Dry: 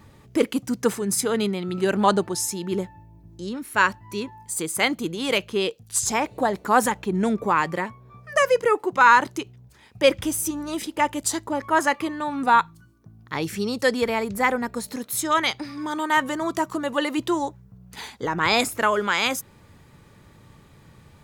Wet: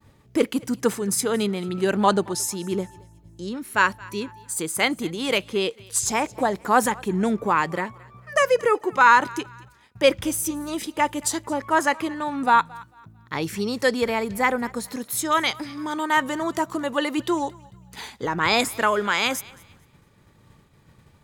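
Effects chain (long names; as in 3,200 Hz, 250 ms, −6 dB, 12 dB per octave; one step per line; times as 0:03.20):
feedback echo with a high-pass in the loop 223 ms, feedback 38%, high-pass 550 Hz, level −22 dB
downward expander −45 dBFS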